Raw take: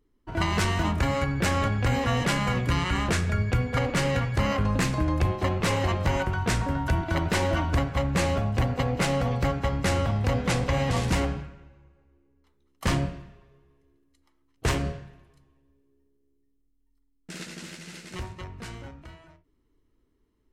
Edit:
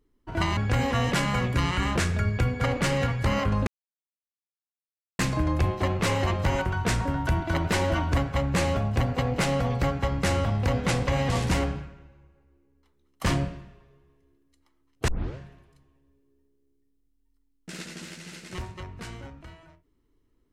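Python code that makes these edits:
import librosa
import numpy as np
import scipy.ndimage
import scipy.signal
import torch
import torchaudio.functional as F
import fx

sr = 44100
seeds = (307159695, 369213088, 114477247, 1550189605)

y = fx.edit(x, sr, fx.cut(start_s=0.57, length_s=1.13),
    fx.insert_silence(at_s=4.8, length_s=1.52),
    fx.tape_start(start_s=14.69, length_s=0.29), tone=tone)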